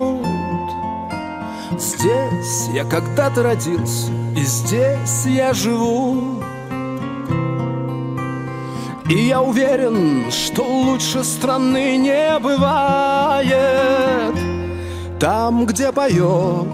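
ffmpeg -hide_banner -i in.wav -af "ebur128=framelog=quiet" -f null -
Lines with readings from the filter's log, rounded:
Integrated loudness:
  I:         -18.0 LUFS
  Threshold: -28.0 LUFS
Loudness range:
  LRA:         4.8 LU
  Threshold: -37.8 LUFS
  LRA low:   -20.6 LUFS
  LRA high:  -15.8 LUFS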